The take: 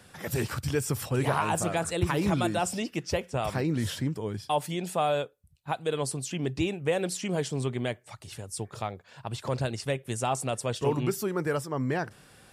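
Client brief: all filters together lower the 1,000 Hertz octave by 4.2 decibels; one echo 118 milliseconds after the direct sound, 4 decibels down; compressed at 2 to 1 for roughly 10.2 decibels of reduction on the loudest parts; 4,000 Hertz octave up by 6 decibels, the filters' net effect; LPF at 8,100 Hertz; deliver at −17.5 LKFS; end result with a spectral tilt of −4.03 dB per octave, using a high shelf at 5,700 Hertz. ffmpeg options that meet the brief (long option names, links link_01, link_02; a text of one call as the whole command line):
ffmpeg -i in.wav -af "lowpass=8100,equalizer=frequency=1000:width_type=o:gain=-6.5,equalizer=frequency=4000:width_type=o:gain=5.5,highshelf=frequency=5700:gain=8,acompressor=threshold=-39dB:ratio=2,aecho=1:1:118:0.631,volume=18.5dB" out.wav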